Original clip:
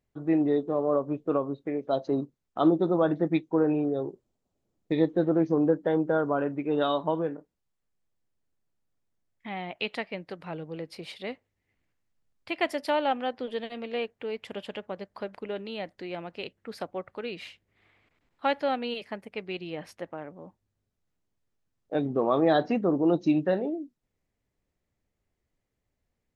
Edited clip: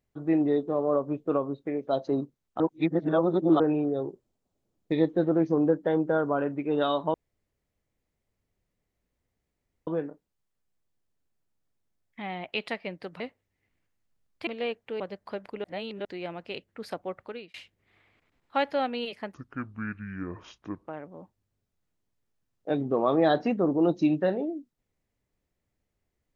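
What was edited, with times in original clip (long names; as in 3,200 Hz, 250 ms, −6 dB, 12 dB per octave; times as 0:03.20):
0:02.60–0:03.60: reverse
0:07.14: splice in room tone 2.73 s
0:10.47–0:11.26: remove
0:12.53–0:13.80: remove
0:14.33–0:14.89: remove
0:15.53–0:15.94: reverse
0:17.13–0:17.43: fade out linear
0:19.23–0:20.12: play speed 58%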